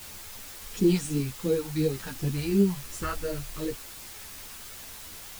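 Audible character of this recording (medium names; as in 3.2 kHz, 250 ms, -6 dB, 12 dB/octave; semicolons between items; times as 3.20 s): phasing stages 2, 2.8 Hz, lowest notch 320–1200 Hz; a quantiser's noise floor 8-bit, dither triangular; a shimmering, thickened sound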